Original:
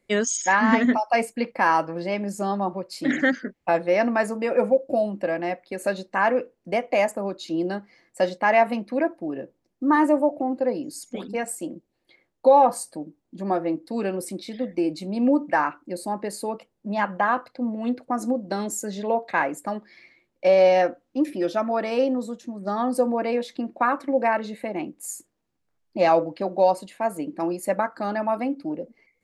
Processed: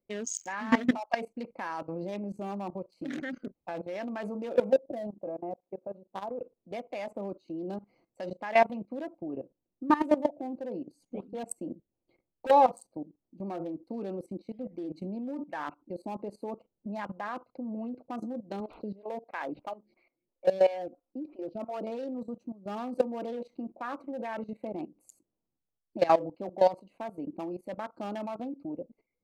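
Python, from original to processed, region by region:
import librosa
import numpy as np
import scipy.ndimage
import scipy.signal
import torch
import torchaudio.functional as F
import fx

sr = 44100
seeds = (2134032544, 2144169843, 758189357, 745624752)

y = fx.chain(x, sr, fx.lowpass(hz=1100.0, slope=12),
    fx.level_steps(step_db=15),
    fx.low_shelf(hz=160.0, db=-7.0), at=(5.07, 6.41))
y = fx.chain(y, sr, fx.low_shelf(hz=220.0, db=6.0),
    fx.overload_stage(gain_db=17.5), at=(11.59, 12.51))
y = fx.chain(y, sr, fx.resample_bad(factor=4, down='none', up='filtered'),
    fx.stagger_phaser(hz=3.0), at=(18.6, 21.87))
y = fx.wiener(y, sr, points=25)
y = fx.high_shelf(y, sr, hz=3100.0, db=4.5)
y = fx.level_steps(y, sr, step_db=17)
y = F.gain(torch.from_numpy(y), -1.5).numpy()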